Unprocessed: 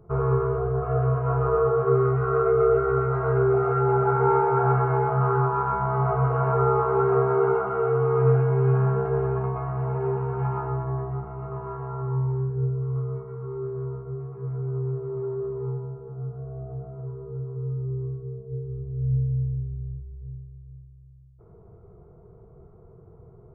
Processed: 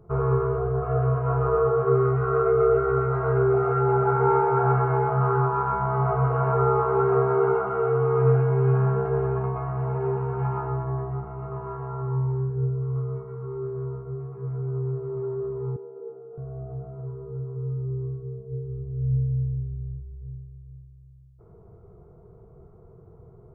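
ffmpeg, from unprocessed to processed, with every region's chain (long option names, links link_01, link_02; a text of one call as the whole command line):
ffmpeg -i in.wav -filter_complex "[0:a]asettb=1/sr,asplit=3[link_01][link_02][link_03];[link_01]atrim=end=15.764[link_04];[link_02]atrim=start=15.76:end=16.38,asetpts=PTS-STARTPTS,afade=type=in:duration=0.004:curve=qsin,afade=type=out:start_time=0.616:duration=0.004:curve=qsin,acompressor=threshold=-34dB:ratio=2.5:attack=3.2:release=140:knee=1:detection=peak,highpass=frequency=270:width=0.5412,highpass=frequency=270:width=1.3066,equalizer=frequency=320:width_type=q:width=4:gain=4,equalizer=frequency=470:width_type=q:width=4:gain=7,equalizer=frequency=680:width_type=q:width=4:gain=-3,equalizer=frequency=1100:width_type=q:width=4:gain=-8,equalizer=frequency=1600:width_type=q:width=4:gain=-5,lowpass=frequency=2100:width=0.5412,lowpass=frequency=2100:width=1.3066[link_05];[link_03]atrim=start=16.376[link_06];[link_04][link_05]acrossfade=duration=0.004:curve1=hsin:curve2=qsin[link_07];[link_07][link_06]acrossfade=duration=0.004:curve1=qsin:curve2=hsin" out.wav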